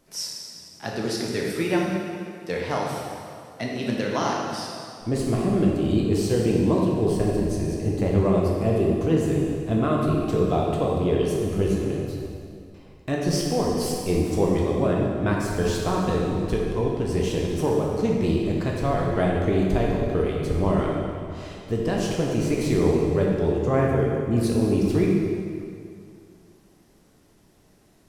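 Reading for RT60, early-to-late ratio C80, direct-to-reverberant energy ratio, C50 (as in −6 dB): 2.3 s, 1.5 dB, −3.0 dB, −0.5 dB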